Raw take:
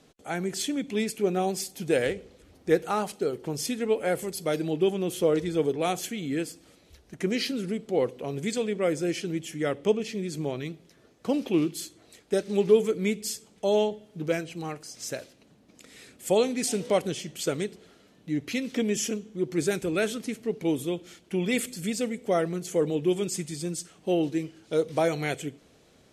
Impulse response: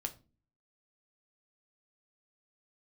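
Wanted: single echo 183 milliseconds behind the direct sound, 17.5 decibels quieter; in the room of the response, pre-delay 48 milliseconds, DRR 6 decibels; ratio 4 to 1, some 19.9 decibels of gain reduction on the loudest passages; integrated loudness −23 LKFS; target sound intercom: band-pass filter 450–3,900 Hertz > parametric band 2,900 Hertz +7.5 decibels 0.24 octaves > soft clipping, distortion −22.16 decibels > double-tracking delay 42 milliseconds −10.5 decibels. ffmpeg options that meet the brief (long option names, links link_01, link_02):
-filter_complex "[0:a]acompressor=threshold=-39dB:ratio=4,aecho=1:1:183:0.133,asplit=2[link_01][link_02];[1:a]atrim=start_sample=2205,adelay=48[link_03];[link_02][link_03]afir=irnorm=-1:irlink=0,volume=-5.5dB[link_04];[link_01][link_04]amix=inputs=2:normalize=0,highpass=450,lowpass=3900,equalizer=frequency=2900:width_type=o:width=0.24:gain=7.5,asoftclip=threshold=-31.5dB,asplit=2[link_05][link_06];[link_06]adelay=42,volume=-10.5dB[link_07];[link_05][link_07]amix=inputs=2:normalize=0,volume=22dB"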